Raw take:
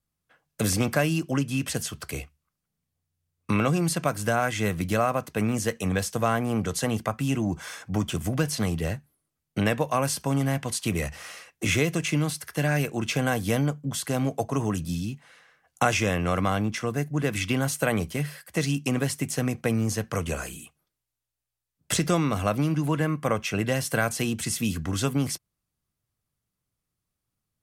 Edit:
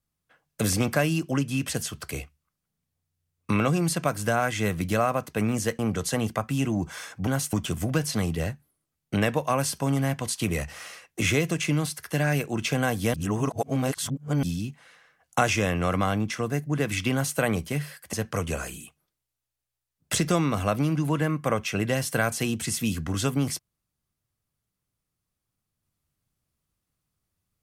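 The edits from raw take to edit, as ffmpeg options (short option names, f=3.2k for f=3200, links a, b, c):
-filter_complex "[0:a]asplit=7[a][b][c][d][e][f][g];[a]atrim=end=5.792[h];[b]atrim=start=6.488:end=7.972[i];[c]atrim=start=17.558:end=17.822[j];[d]atrim=start=7.968:end=13.582[k];[e]atrim=start=13.578:end=14.872,asetpts=PTS-STARTPTS,areverse[l];[f]atrim=start=14.868:end=18.572[m];[g]atrim=start=19.918[n];[h][i]acrossfade=d=0.004:c1=hsin:c2=hsin[o];[o][j]acrossfade=d=0.004:c1=hsin:c2=hsin[p];[p][k]acrossfade=d=0.004:c1=hsin:c2=hsin[q];[q][l]acrossfade=d=0.004:c1=hsin:c2=hsin[r];[r][m]acrossfade=d=0.004:c1=hsin:c2=hsin[s];[s][n]acrossfade=d=0.004:c1=hsin:c2=hsin"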